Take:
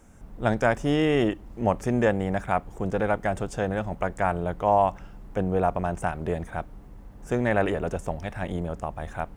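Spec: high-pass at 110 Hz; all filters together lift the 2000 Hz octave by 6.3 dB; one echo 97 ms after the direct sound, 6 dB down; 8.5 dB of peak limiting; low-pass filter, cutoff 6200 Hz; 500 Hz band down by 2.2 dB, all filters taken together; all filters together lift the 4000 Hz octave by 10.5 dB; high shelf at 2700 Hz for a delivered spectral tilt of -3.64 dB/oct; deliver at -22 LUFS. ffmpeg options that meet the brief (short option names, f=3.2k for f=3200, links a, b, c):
-af "highpass=110,lowpass=6.2k,equalizer=f=500:t=o:g=-3.5,equalizer=f=2k:t=o:g=4,highshelf=f=2.7k:g=8,equalizer=f=4k:t=o:g=7,alimiter=limit=-12.5dB:level=0:latency=1,aecho=1:1:97:0.501,volume=5.5dB"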